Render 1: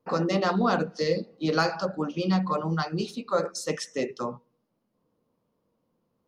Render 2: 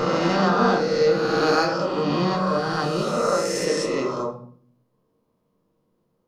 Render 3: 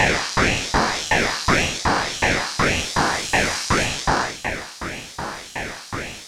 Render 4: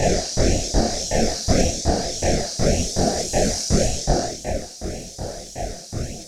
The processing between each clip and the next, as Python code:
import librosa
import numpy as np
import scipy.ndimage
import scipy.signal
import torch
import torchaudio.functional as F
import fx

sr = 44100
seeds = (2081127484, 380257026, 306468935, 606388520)

y1 = fx.spec_swells(x, sr, rise_s=2.28)
y1 = fx.room_shoebox(y1, sr, seeds[0], volume_m3=61.0, walls='mixed', distance_m=0.54)
y1 = F.gain(torch.from_numpy(y1), -2.0).numpy()
y2 = fx.bin_compress(y1, sr, power=0.2)
y2 = fx.filter_lfo_highpass(y2, sr, shape='saw_up', hz=2.7, low_hz=370.0, high_hz=5200.0, q=0.81)
y2 = fx.ring_lfo(y2, sr, carrier_hz=790.0, swing_pct=70, hz=1.8)
y2 = F.gain(torch.from_numpy(y2), 1.5).numpy()
y3 = fx.curve_eq(y2, sr, hz=(160.0, 290.0, 690.0, 1000.0, 1500.0, 3000.0, 5800.0, 10000.0), db=(0, -3, 1, -29, -19, -17, 0, -5))
y3 = fx.chorus_voices(y3, sr, voices=6, hz=1.3, base_ms=25, depth_ms=3.0, mix_pct=55)
y3 = F.gain(torch.from_numpy(y3), 7.0).numpy()